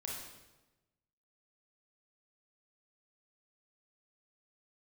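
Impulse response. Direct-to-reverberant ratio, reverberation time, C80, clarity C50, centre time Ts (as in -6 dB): -3.0 dB, 1.1 s, 4.0 dB, 0.5 dB, 65 ms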